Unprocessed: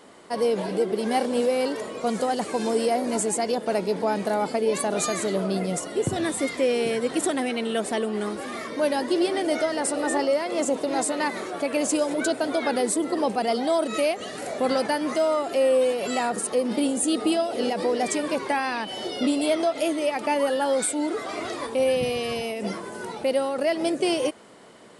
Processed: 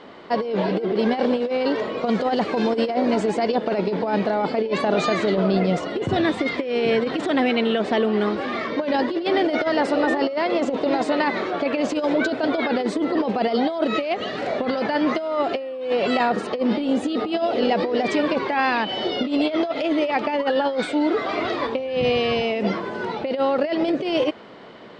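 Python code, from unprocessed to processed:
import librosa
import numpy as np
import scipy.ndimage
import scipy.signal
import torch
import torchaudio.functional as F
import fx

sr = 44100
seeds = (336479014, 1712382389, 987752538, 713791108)

y = scipy.signal.sosfilt(scipy.signal.butter(4, 4200.0, 'lowpass', fs=sr, output='sos'), x)
y = fx.over_compress(y, sr, threshold_db=-25.0, ratio=-0.5)
y = y * librosa.db_to_amplitude(5.0)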